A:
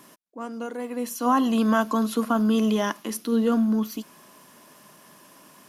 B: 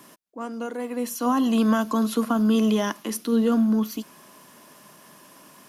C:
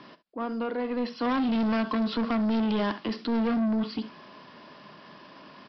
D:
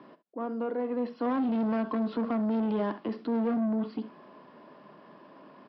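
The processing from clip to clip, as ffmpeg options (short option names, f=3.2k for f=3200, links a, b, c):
-filter_complex "[0:a]acrossover=split=380|3000[a][b][c];[b]acompressor=threshold=-27dB:ratio=2.5[d];[a][d][c]amix=inputs=3:normalize=0,volume=1.5dB"
-af "aecho=1:1:44|67:0.112|0.141,aresample=11025,asoftclip=type=tanh:threshold=-26dB,aresample=44100,volume=2.5dB"
-af "bandpass=f=430:t=q:w=0.64:csg=0"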